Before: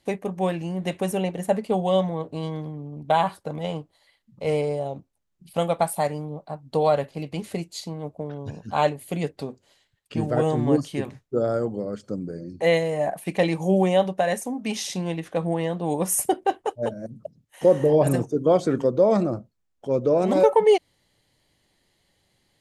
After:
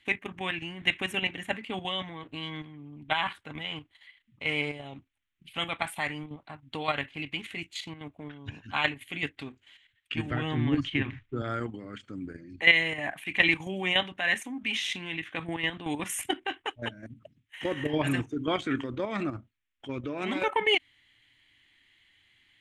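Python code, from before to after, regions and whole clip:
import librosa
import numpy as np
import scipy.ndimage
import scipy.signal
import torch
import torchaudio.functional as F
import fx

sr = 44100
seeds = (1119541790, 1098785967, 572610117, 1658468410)

y = fx.chain(x, sr, fx.lowpass(hz=4700.0, slope=12),
    fx.low_shelf(hz=130.0, db=12.0),
    fx.band_squash(depth_pct=70), at=(10.31, 11.42))
y = fx.low_shelf(y, sr, hz=160.0, db=-10.0)
y = fx.level_steps(y, sr, step_db=9)
y = fx.curve_eq(y, sr, hz=(110.0, 180.0, 280.0, 520.0, 2100.0, 3300.0, 4800.0, 7300.0, 11000.0), db=(0, -12, -3, -20, 8, 6, -14, -10, -15))
y = y * 10.0 ** (6.0 / 20.0)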